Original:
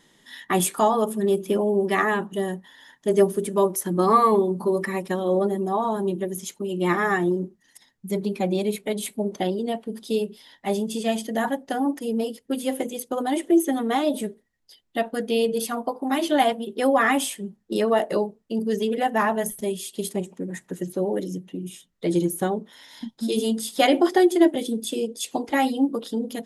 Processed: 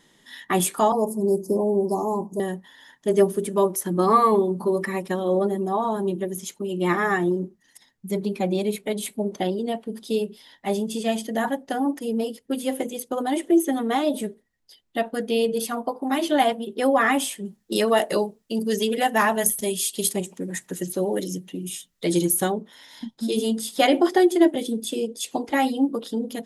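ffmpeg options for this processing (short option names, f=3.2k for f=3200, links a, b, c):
-filter_complex "[0:a]asettb=1/sr,asplit=3[a][b][c];[a]atrim=end=0.924[d];[b]atrim=start=0.92:end=2.4,asetpts=PTS-STARTPTS,afade=t=in:d=0.004:c=qsin,afade=t=out:st=1.476:d=0.004:c=qsin,asuperstop=centerf=2200:order=20:qfactor=0.64[e];[c]atrim=start=2.396[f];[d][e]acrossfade=d=0.004:c1=hsin:c2=qsin[g];[g][f]acrossfade=d=0.004:c1=qsin:c2=hsin,asettb=1/sr,asplit=3[h][i][j];[h]atrim=end=17.454[k];[i]atrim=start=17.45:end=22.52,asetpts=PTS-STARTPTS,afade=t=in:d=0.004:c=qsin,afade=t=out:st=5.066:d=0.004:c=qsin,highshelf=f=2.3k:g=11[l];[j]atrim=start=22.516[m];[k][l]acrossfade=d=0.004:c1=hsin:c2=qsin[n];[n][m]acrossfade=d=0.004:c1=qsin:c2=hsin"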